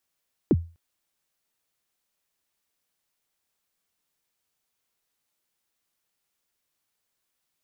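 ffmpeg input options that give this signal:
-f lavfi -i "aevalsrc='0.251*pow(10,-3*t/0.32)*sin(2*PI*(420*0.042/log(84/420)*(exp(log(84/420)*min(t,0.042)/0.042)-1)+84*max(t-0.042,0)))':d=0.25:s=44100"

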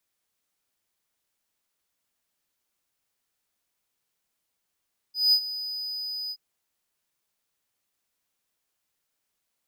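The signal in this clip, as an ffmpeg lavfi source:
-f lavfi -i "aevalsrc='0.211*(1-4*abs(mod(4980*t+0.25,1)-0.5))':d=1.224:s=44100,afade=t=in:d=0.186,afade=t=out:st=0.186:d=0.072:silence=0.178,afade=t=out:st=1.17:d=0.054"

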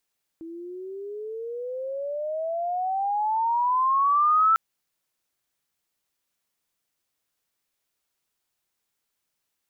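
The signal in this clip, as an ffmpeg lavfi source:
-f lavfi -i "aevalsrc='pow(10,(-15.5+20*(t/4.15-1))/20)*sin(2*PI*324*4.15/(24.5*log(2)/12)*(exp(24.5*log(2)/12*t/4.15)-1))':d=4.15:s=44100"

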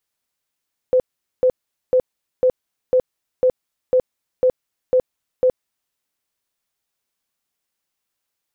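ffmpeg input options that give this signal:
-f lavfi -i "aevalsrc='0.282*sin(2*PI*509*mod(t,0.5))*lt(mod(t,0.5),35/509)':d=5:s=44100"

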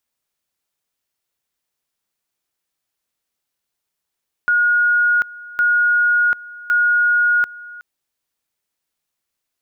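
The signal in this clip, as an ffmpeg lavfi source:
-f lavfi -i "aevalsrc='pow(10,(-12-20.5*gte(mod(t,1.11),0.74))/20)*sin(2*PI*1440*t)':d=3.33:s=44100"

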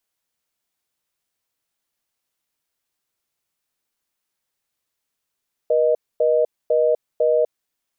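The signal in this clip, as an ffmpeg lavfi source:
-f lavfi -i "aevalsrc='0.141*(sin(2*PI*480*t)+sin(2*PI*620*t))*clip(min(mod(t,0.5),0.25-mod(t,0.5))/0.005,0,1)':d=1.75:s=44100"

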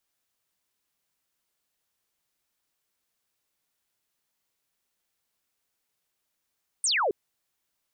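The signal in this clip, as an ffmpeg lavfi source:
-f lavfi -i "aevalsrc='0.0794*clip(t/0.002,0,1)*clip((0.27-t)/0.002,0,1)*sin(2*PI*9500*0.27/log(360/9500)*(exp(log(360/9500)*t/0.27)-1))':d=0.27:s=44100"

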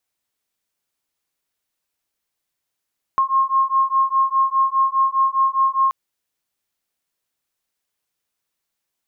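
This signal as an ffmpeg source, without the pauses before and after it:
-f lavfi -i "aevalsrc='0.126*(sin(2*PI*1070*t)+sin(2*PI*1074.9*t))':d=2.73:s=44100"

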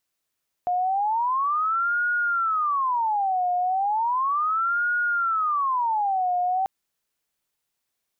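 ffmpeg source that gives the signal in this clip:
-f lavfi -i "aevalsrc='0.0944*sin(2*PI*(1078*t-362/(2*PI*0.35)*sin(2*PI*0.35*t)))':d=5.99:s=44100"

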